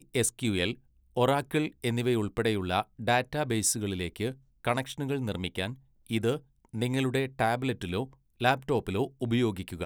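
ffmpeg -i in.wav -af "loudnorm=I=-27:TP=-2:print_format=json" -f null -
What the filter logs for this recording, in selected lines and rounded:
"input_i" : "-29.9",
"input_tp" : "-8.9",
"input_lra" : "2.7",
"input_thresh" : "-40.0",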